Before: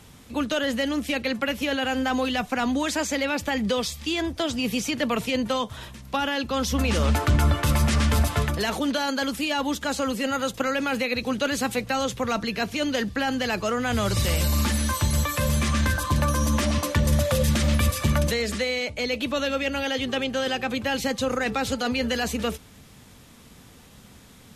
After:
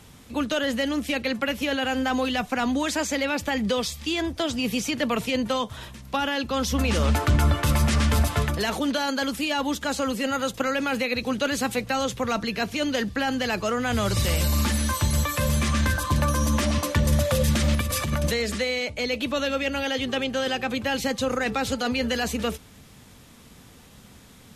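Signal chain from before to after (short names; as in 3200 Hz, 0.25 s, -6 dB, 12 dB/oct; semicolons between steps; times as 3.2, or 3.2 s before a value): 17.75–18.26 negative-ratio compressor -23 dBFS, ratio -0.5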